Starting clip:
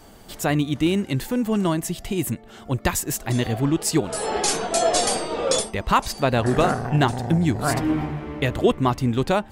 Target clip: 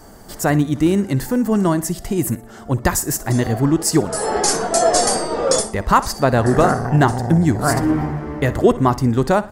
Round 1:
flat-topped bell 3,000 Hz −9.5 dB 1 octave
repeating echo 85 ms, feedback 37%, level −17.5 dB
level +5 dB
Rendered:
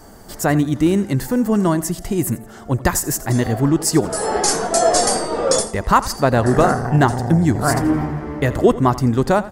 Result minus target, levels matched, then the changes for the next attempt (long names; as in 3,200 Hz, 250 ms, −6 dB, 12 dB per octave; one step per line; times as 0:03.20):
echo 25 ms late
change: repeating echo 60 ms, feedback 37%, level −17.5 dB